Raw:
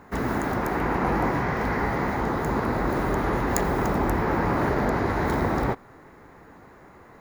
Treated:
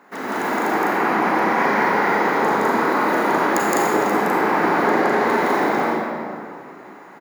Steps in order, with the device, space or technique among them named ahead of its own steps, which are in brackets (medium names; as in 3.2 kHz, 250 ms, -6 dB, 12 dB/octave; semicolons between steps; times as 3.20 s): stadium PA (high-pass 200 Hz 24 dB/octave; peaking EQ 2.4 kHz +3 dB 2.4 oct; loudspeakers at several distances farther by 57 m 0 dB, 70 m -2 dB; reverberation RT60 2.4 s, pre-delay 31 ms, DRR -2 dB); bass shelf 290 Hz -5.5 dB; 1.54–3.47 s: doubling 40 ms -5 dB; trim -1.5 dB